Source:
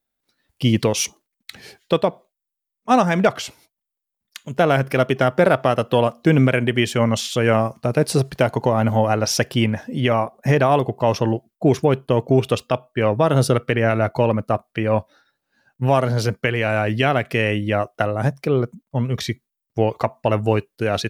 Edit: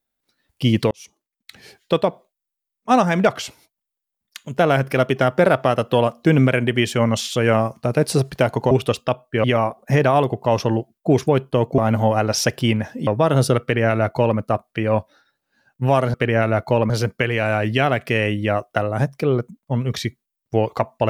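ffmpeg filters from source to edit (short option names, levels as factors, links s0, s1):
-filter_complex "[0:a]asplit=8[s0][s1][s2][s3][s4][s5][s6][s7];[s0]atrim=end=0.91,asetpts=PTS-STARTPTS,afade=t=out:st=0.906:d=0.004:c=hsin[s8];[s1]atrim=start=0.91:end=8.712,asetpts=PTS-STARTPTS,afade=t=in:d=1.06[s9];[s2]atrim=start=12.338:end=13.072[s10];[s3]atrim=start=9.998:end=12.342[s11];[s4]atrim=start=8.708:end=10.002[s12];[s5]atrim=start=13.068:end=16.142[s13];[s6]atrim=start=13.618:end=14.382[s14];[s7]atrim=start=16.138[s15];[s8][s9]concat=n=2:v=0:a=1[s16];[s16][s10]acrossfade=d=0.004:c1=hsin:c2=hsin[s17];[s17][s11]acrossfade=d=0.004:c1=hsin:c2=hsin[s18];[s18][s12]acrossfade=d=0.004:c1=hsin:c2=hsin[s19];[s19][s13]acrossfade=d=0.004:c1=hsin:c2=hsin[s20];[s20][s14]acrossfade=d=0.004:c1=hsin:c2=hsin[s21];[s21][s15]acrossfade=d=0.004:c1=hsin:c2=hsin"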